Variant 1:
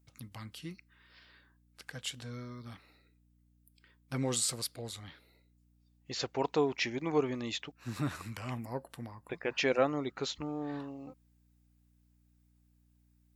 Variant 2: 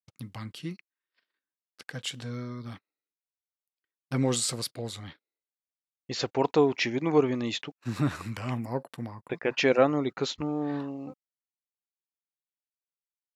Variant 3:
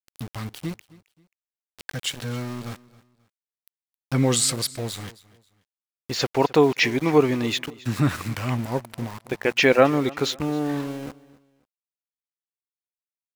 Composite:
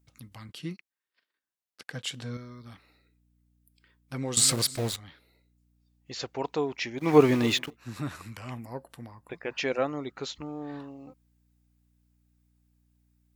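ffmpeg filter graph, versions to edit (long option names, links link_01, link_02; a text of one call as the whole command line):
ffmpeg -i take0.wav -i take1.wav -i take2.wav -filter_complex "[2:a]asplit=2[link_01][link_02];[0:a]asplit=4[link_03][link_04][link_05][link_06];[link_03]atrim=end=0.492[link_07];[1:a]atrim=start=0.488:end=2.372[link_08];[link_04]atrim=start=2.368:end=4.372[link_09];[link_01]atrim=start=4.368:end=4.962[link_10];[link_05]atrim=start=4.958:end=7.2[link_11];[link_02]atrim=start=6.96:end=7.77[link_12];[link_06]atrim=start=7.53[link_13];[link_07][link_08]acrossfade=duration=0.004:curve1=hsin:curve2=hsin[link_14];[link_14][link_09]acrossfade=duration=0.004:curve1=hsin:curve2=hsin[link_15];[link_15][link_10]acrossfade=duration=0.004:curve1=hsin:curve2=hsin[link_16];[link_16][link_11]acrossfade=duration=0.004:curve1=hsin:curve2=hsin[link_17];[link_17][link_12]acrossfade=duration=0.24:curve1=tri:curve2=tri[link_18];[link_18][link_13]acrossfade=duration=0.24:curve1=tri:curve2=tri" out.wav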